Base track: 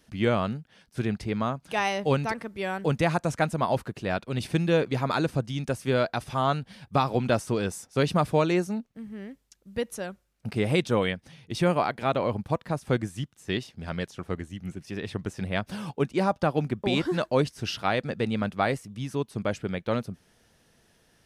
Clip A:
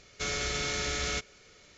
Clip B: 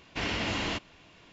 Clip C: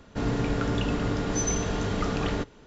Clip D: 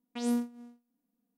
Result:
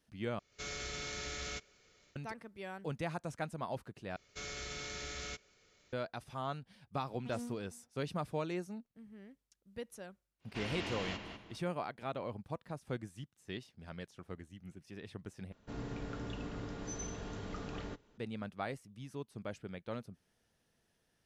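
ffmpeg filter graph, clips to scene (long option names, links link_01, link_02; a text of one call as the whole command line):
ffmpeg -i bed.wav -i cue0.wav -i cue1.wav -i cue2.wav -i cue3.wav -filter_complex "[1:a]asplit=2[link_01][link_02];[0:a]volume=-14.5dB[link_03];[link_01]dynaudnorm=framelen=100:gausssize=3:maxgain=7.5dB[link_04];[2:a]asplit=2[link_05][link_06];[link_06]adelay=196,lowpass=frequency=3100:poles=1,volume=-5dB,asplit=2[link_07][link_08];[link_08]adelay=196,lowpass=frequency=3100:poles=1,volume=0.34,asplit=2[link_09][link_10];[link_10]adelay=196,lowpass=frequency=3100:poles=1,volume=0.34,asplit=2[link_11][link_12];[link_12]adelay=196,lowpass=frequency=3100:poles=1,volume=0.34[link_13];[link_05][link_07][link_09][link_11][link_13]amix=inputs=5:normalize=0[link_14];[link_03]asplit=4[link_15][link_16][link_17][link_18];[link_15]atrim=end=0.394[link_19];[link_04]atrim=end=1.77,asetpts=PTS-STARTPTS,volume=-17.5dB[link_20];[link_16]atrim=start=2.156:end=4.164[link_21];[link_02]atrim=end=1.77,asetpts=PTS-STARTPTS,volume=-11.5dB[link_22];[link_17]atrim=start=5.926:end=15.524[link_23];[3:a]atrim=end=2.66,asetpts=PTS-STARTPTS,volume=-15.5dB[link_24];[link_18]atrim=start=18.176[link_25];[4:a]atrim=end=1.37,asetpts=PTS-STARTPTS,volume=-15dB,afade=type=in:duration=0.004:curve=hsin,afade=type=out:start_time=1.366:duration=0.004:curve=hsin,adelay=7100[link_26];[link_14]atrim=end=1.32,asetpts=PTS-STARTPTS,volume=-10.5dB,afade=type=in:duration=0.1,afade=type=out:start_time=1.22:duration=0.1,adelay=10390[link_27];[link_19][link_20]acrossfade=duration=0.004:curve1=hsin:curve2=hsin[link_28];[link_28][link_21]acrossfade=duration=0.004:curve1=hsin:curve2=hsin[link_29];[link_29][link_22]acrossfade=duration=0.004:curve1=hsin:curve2=hsin[link_30];[link_30][link_23]acrossfade=duration=0.004:curve1=hsin:curve2=hsin[link_31];[link_31][link_24]acrossfade=duration=0.004:curve1=hsin:curve2=hsin[link_32];[link_32][link_25]acrossfade=duration=0.004:curve1=hsin:curve2=hsin[link_33];[link_33][link_26][link_27]amix=inputs=3:normalize=0" out.wav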